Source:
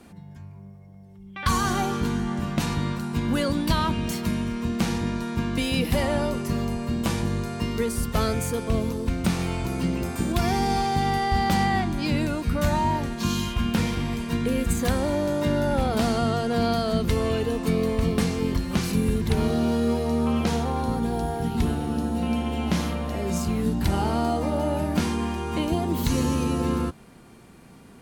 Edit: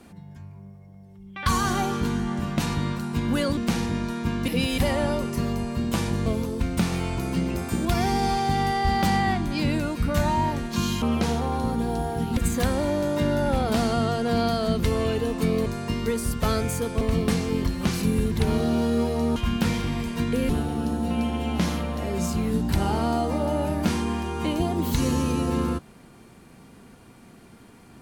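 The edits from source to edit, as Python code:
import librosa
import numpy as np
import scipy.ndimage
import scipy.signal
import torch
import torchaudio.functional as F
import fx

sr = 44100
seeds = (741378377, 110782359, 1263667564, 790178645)

y = fx.edit(x, sr, fx.cut(start_s=3.57, length_s=1.12),
    fx.reverse_span(start_s=5.6, length_s=0.3),
    fx.move(start_s=7.38, length_s=1.35, to_s=17.91),
    fx.swap(start_s=13.49, length_s=1.13, other_s=20.26, other_length_s=1.35), tone=tone)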